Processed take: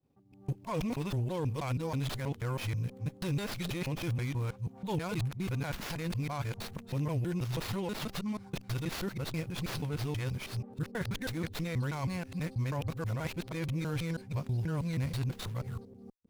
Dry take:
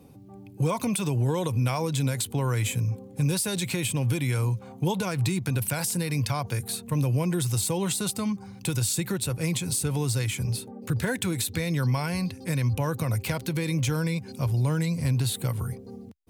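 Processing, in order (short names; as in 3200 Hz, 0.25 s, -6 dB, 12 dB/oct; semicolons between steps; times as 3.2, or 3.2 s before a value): local time reversal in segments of 0.161 s; expander -41 dBFS; running maximum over 5 samples; gain -7.5 dB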